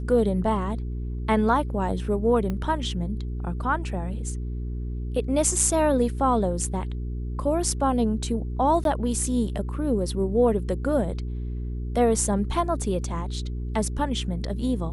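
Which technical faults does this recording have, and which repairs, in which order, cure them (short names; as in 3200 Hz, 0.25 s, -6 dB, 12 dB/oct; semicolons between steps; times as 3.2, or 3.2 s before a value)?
hum 60 Hz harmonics 7 -30 dBFS
2.5 pop -18 dBFS
8.84–8.85 gap 12 ms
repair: de-click; de-hum 60 Hz, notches 7; interpolate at 8.84, 12 ms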